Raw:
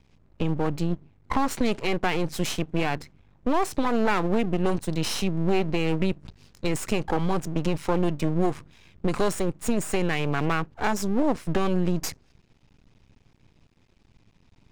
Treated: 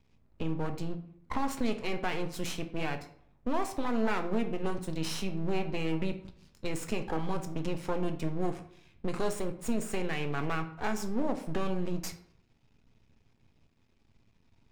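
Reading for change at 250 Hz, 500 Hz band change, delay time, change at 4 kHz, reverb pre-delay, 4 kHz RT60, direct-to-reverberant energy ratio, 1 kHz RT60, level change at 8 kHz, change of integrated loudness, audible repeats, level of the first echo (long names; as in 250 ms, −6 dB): −7.5 dB, −7.5 dB, no echo audible, −8.0 dB, 3 ms, 0.40 s, 5.5 dB, 0.60 s, −8.0 dB, −8.0 dB, no echo audible, no echo audible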